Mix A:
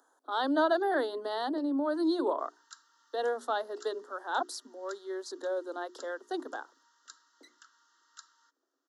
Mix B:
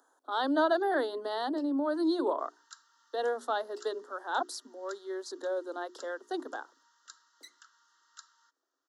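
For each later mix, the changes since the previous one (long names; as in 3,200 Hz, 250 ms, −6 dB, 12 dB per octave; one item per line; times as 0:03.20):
first sound: add spectral tilt +4 dB per octave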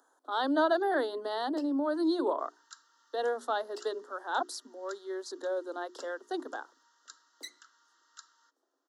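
first sound +8.0 dB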